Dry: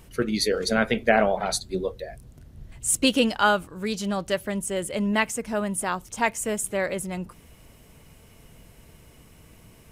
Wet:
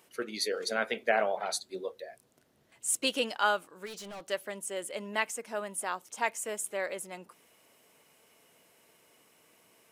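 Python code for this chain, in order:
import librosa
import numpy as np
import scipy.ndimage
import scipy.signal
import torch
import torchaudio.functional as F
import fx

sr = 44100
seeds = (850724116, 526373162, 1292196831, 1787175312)

y = scipy.signal.sosfilt(scipy.signal.butter(2, 410.0, 'highpass', fs=sr, output='sos'), x)
y = fx.clip_hard(y, sr, threshold_db=-34.0, at=(3.85, 4.28), fade=0.02)
y = y * 10.0 ** (-6.5 / 20.0)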